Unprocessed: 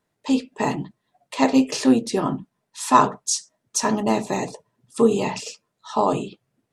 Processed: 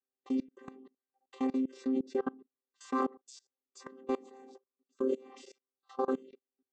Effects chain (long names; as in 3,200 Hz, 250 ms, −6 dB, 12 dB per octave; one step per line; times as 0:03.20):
channel vocoder with a chord as carrier bare fifth, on C4
output level in coarse steps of 24 dB
level −5 dB